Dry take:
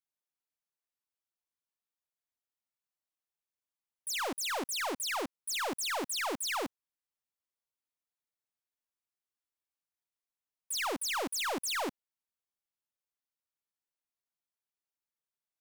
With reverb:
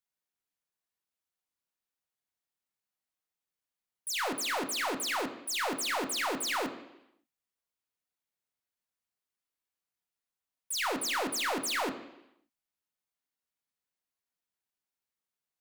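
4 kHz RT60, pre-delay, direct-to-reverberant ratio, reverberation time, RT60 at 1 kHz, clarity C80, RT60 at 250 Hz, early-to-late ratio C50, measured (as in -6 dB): 0.90 s, 3 ms, 4.0 dB, 0.85 s, 0.85 s, 12.5 dB, 0.85 s, 11.0 dB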